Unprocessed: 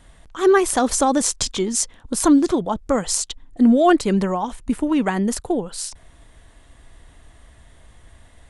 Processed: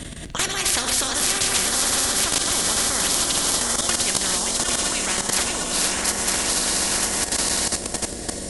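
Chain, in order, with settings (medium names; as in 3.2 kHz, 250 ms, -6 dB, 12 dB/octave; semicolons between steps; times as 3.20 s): backward echo that repeats 476 ms, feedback 54%, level -6 dB; high-pass 43 Hz 12 dB/octave; amplifier tone stack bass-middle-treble 10-0-1; in parallel at 0 dB: compression 4:1, threshold -51 dBFS, peak gain reduction 19 dB; on the sum: echo that smears into a reverb 916 ms, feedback 52%, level -6 dB; on a send at -7 dB: reverberation RT60 0.55 s, pre-delay 9 ms; on the sum: level held to a coarse grid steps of 15 dB; loudness maximiser +29.5 dB; spectrum-flattening compressor 10:1; trim -1 dB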